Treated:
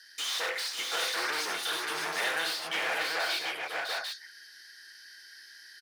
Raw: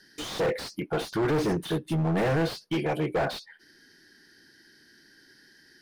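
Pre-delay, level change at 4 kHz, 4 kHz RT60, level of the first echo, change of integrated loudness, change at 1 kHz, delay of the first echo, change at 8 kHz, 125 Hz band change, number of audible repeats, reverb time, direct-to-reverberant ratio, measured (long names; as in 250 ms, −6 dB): no reverb audible, +8.0 dB, no reverb audible, −10.5 dB, −2.5 dB, −1.0 dB, 56 ms, +8.0 dB, −31.5 dB, 6, no reverb audible, no reverb audible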